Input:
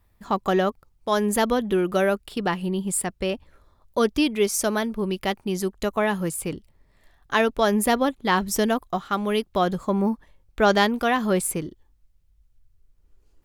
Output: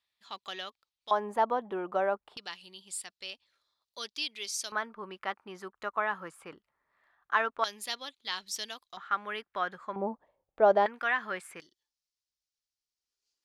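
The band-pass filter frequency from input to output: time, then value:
band-pass filter, Q 2.3
3.7 kHz
from 1.11 s 880 Hz
from 2.37 s 4.3 kHz
from 4.72 s 1.3 kHz
from 7.64 s 4.2 kHz
from 8.97 s 1.6 kHz
from 9.96 s 650 Hz
from 10.86 s 1.7 kHz
from 11.60 s 5.1 kHz

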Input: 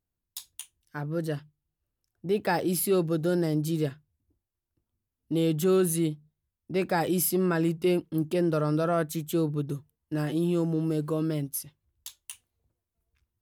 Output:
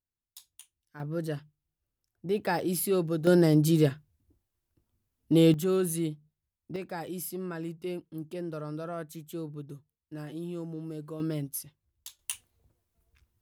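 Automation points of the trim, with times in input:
-10.5 dB
from 1.00 s -2.5 dB
from 3.27 s +5 dB
from 5.54 s -4 dB
from 6.76 s -11 dB
from 11.20 s -3 dB
from 12.19 s +7 dB

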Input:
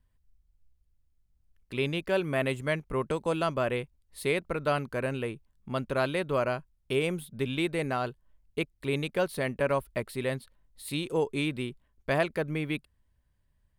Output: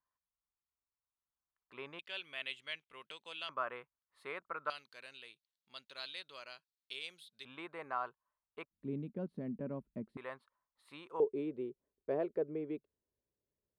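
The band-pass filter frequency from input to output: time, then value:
band-pass filter, Q 3.4
1.1 kHz
from 1.99 s 3.2 kHz
from 3.49 s 1.2 kHz
from 4.70 s 4.1 kHz
from 7.45 s 1.1 kHz
from 8.71 s 220 Hz
from 10.17 s 1.1 kHz
from 11.20 s 420 Hz

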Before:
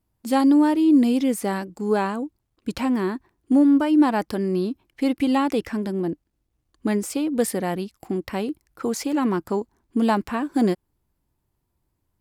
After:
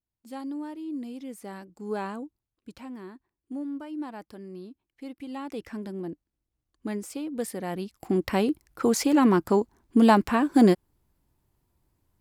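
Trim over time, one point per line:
1.17 s -18.5 dB
2.15 s -8 dB
2.77 s -18 dB
5.26 s -18 dB
5.72 s -9.5 dB
7.54 s -9.5 dB
8.20 s +2.5 dB

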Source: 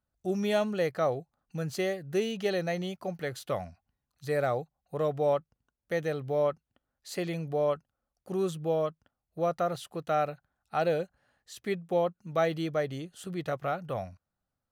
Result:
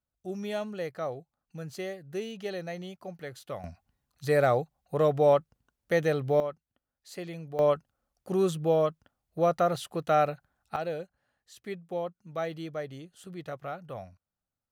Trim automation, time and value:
-6 dB
from 3.64 s +5 dB
from 6.40 s -6 dB
from 7.59 s +4 dB
from 10.76 s -6 dB

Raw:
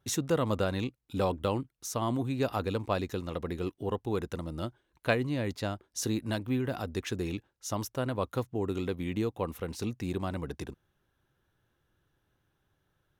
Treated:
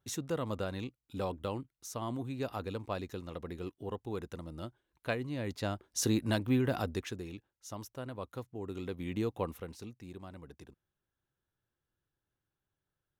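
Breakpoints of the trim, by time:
5.27 s -7 dB
5.89 s +1.5 dB
6.84 s +1.5 dB
7.25 s -10 dB
8.55 s -10 dB
9.38 s -1 dB
9.93 s -14 dB

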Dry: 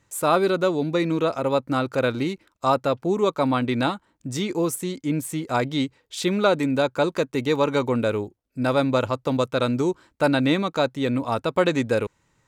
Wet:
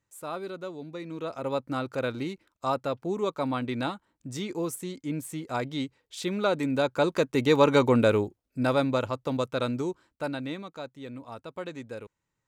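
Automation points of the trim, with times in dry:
1.04 s -16 dB
1.48 s -7.5 dB
6.30 s -7.5 dB
7.65 s +1.5 dB
8.17 s +1.5 dB
9.05 s -6 dB
9.66 s -6 dB
10.76 s -17 dB

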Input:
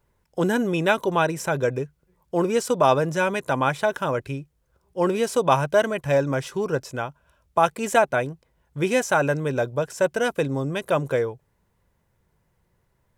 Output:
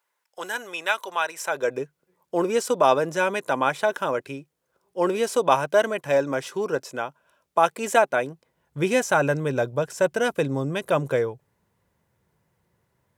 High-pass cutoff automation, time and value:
1.33 s 970 Hz
1.82 s 250 Hz
8.17 s 250 Hz
8.85 s 91 Hz

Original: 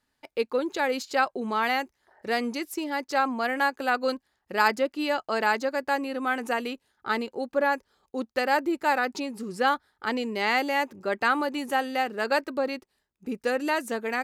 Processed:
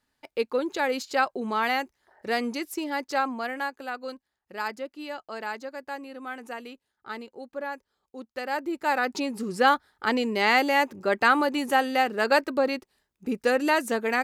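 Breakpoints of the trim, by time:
3.06 s 0 dB
3.96 s -9.5 dB
8.24 s -9.5 dB
9.27 s +3.5 dB

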